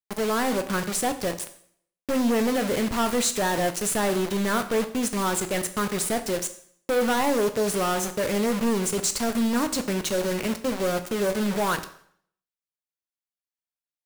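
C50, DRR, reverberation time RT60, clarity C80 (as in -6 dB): 12.5 dB, 8.5 dB, 0.60 s, 15.5 dB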